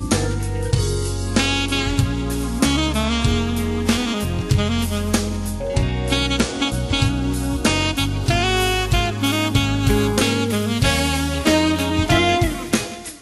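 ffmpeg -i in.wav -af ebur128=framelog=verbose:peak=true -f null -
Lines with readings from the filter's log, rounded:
Integrated loudness:
  I:         -19.6 LUFS
  Threshold: -29.6 LUFS
Loudness range:
  LRA:         2.6 LU
  Threshold: -39.6 LUFS
  LRA low:   -20.8 LUFS
  LRA high:  -18.2 LUFS
True peak:
  Peak:       -4.0 dBFS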